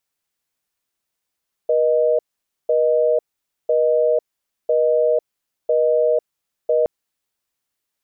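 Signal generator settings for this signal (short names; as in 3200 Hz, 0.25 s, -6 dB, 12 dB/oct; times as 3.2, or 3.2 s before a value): call progress tone busy tone, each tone -16.5 dBFS 5.17 s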